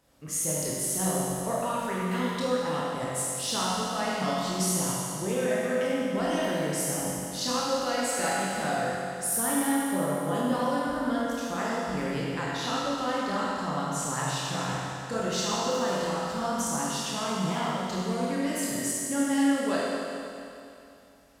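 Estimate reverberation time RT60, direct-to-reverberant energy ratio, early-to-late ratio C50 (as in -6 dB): 2.7 s, -7.0 dB, -4.0 dB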